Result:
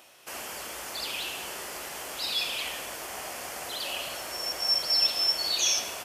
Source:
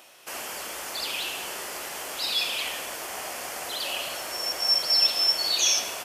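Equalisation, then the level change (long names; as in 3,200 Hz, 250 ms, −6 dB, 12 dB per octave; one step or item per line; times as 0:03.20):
low-shelf EQ 150 Hz +7 dB
−3.0 dB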